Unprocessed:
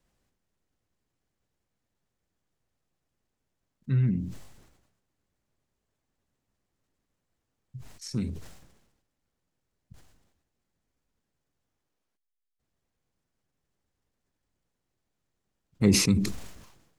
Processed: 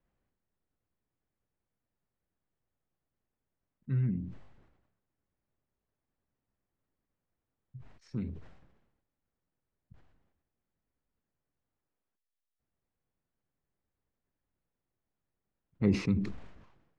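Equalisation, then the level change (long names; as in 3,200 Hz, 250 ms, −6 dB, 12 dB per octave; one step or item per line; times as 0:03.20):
low-pass filter 2,200 Hz 12 dB per octave
−5.5 dB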